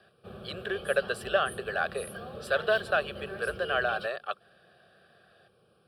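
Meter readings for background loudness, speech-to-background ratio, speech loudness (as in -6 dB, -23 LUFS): -42.5 LUFS, 12.0 dB, -30.5 LUFS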